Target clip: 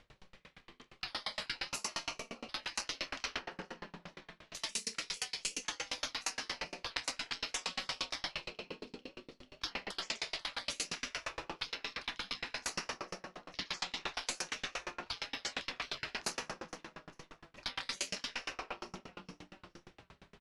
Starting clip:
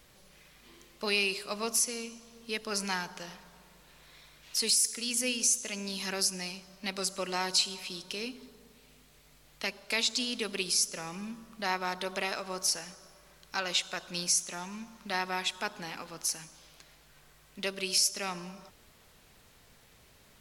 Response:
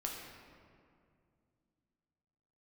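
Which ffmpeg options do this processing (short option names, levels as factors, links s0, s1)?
-filter_complex "[0:a]acontrast=38,agate=range=0.2:threshold=0.00794:ratio=16:detection=peak,asplit=2[s0][s1];[s1]adelay=28,volume=0.562[s2];[s0][s2]amix=inputs=2:normalize=0,acompressor=threshold=0.0282:ratio=4,lowpass=3600,bandreject=f=60:t=h:w=6,bandreject=f=120:t=h:w=6,bandreject=f=180:t=h:w=6,bandreject=f=240:t=h:w=6,bandreject=f=300:t=h:w=6,bandreject=f=360:t=h:w=6,asplit=5[s3][s4][s5][s6][s7];[s4]adelay=442,afreqshift=56,volume=0.1[s8];[s5]adelay=884,afreqshift=112,volume=0.0531[s9];[s6]adelay=1326,afreqshift=168,volume=0.0282[s10];[s7]adelay=1768,afreqshift=224,volume=0.015[s11];[s3][s8][s9][s10][s11]amix=inputs=5:normalize=0,asplit=2[s12][s13];[1:a]atrim=start_sample=2205,adelay=44[s14];[s13][s14]afir=irnorm=-1:irlink=0,volume=0.398[s15];[s12][s15]amix=inputs=2:normalize=0,afftfilt=real='re*lt(hypot(re,im),0.0178)':imag='im*lt(hypot(re,im),0.0178)':win_size=1024:overlap=0.75,aeval=exprs='val(0)*pow(10,-34*if(lt(mod(8.6*n/s,1),2*abs(8.6)/1000),1-mod(8.6*n/s,1)/(2*abs(8.6)/1000),(mod(8.6*n/s,1)-2*abs(8.6)/1000)/(1-2*abs(8.6)/1000))/20)':c=same,volume=5.62"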